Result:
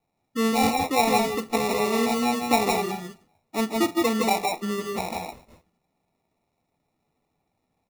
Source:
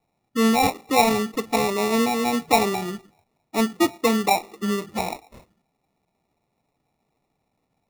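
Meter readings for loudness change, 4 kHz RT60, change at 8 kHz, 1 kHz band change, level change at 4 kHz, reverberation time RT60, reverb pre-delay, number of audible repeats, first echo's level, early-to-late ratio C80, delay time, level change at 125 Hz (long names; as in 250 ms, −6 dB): −2.0 dB, no reverb audible, −2.0 dB, −1.5 dB, −1.5 dB, no reverb audible, no reverb audible, 2, −14.0 dB, no reverb audible, 47 ms, −2.5 dB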